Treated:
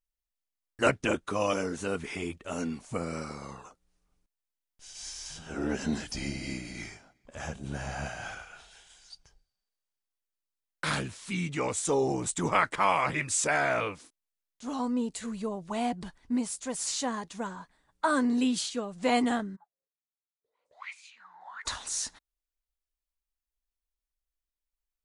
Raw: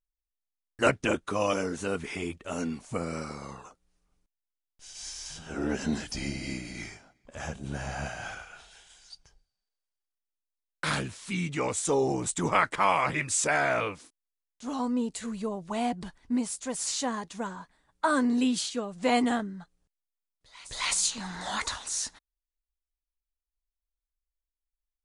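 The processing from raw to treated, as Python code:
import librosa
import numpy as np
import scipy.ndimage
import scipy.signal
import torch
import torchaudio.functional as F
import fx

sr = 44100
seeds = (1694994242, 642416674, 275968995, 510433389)

y = fx.auto_wah(x, sr, base_hz=420.0, top_hz=2400.0, q=12.0, full_db=-25.5, direction='up', at=(19.55, 21.65), fade=0.02)
y = y * 10.0 ** (-1.0 / 20.0)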